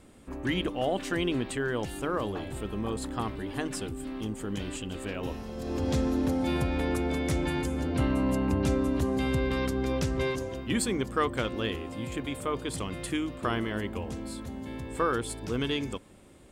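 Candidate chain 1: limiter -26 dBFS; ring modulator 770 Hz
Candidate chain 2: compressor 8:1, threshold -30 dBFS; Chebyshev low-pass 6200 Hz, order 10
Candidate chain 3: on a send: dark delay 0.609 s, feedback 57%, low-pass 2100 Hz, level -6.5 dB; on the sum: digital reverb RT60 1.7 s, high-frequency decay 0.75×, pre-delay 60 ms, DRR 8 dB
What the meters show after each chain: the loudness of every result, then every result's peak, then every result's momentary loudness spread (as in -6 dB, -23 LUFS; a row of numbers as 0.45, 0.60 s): -38.0, -36.5, -29.5 LUFS; -26.0, -18.5, -13.5 dBFS; 4, 3, 8 LU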